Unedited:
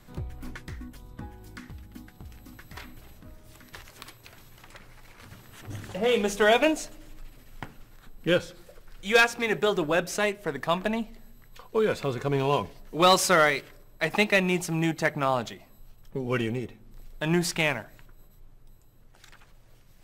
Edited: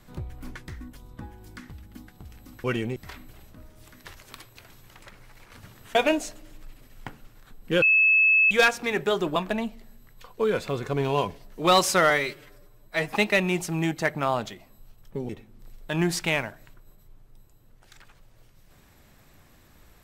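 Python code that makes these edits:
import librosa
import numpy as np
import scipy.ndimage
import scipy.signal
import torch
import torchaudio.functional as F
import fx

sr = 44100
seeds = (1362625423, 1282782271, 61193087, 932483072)

y = fx.edit(x, sr, fx.cut(start_s=5.63, length_s=0.88),
    fx.bleep(start_s=8.38, length_s=0.69, hz=2600.0, db=-15.5),
    fx.cut(start_s=9.92, length_s=0.79),
    fx.stretch_span(start_s=13.45, length_s=0.7, factor=1.5),
    fx.move(start_s=16.29, length_s=0.32, to_s=2.64), tone=tone)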